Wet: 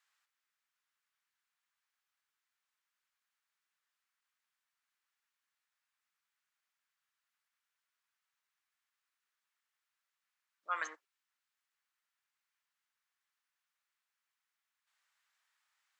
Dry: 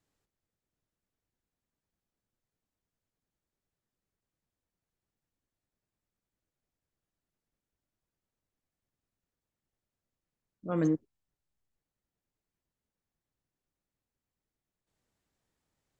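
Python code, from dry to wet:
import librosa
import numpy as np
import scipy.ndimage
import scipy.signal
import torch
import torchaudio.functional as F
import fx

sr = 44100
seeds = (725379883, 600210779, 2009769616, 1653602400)

y = scipy.signal.sosfilt(scipy.signal.butter(4, 1200.0, 'highpass', fs=sr, output='sos'), x)
y = fx.high_shelf(y, sr, hz=3800.0, db=-11.0)
y = y * 10.0 ** (11.0 / 20.0)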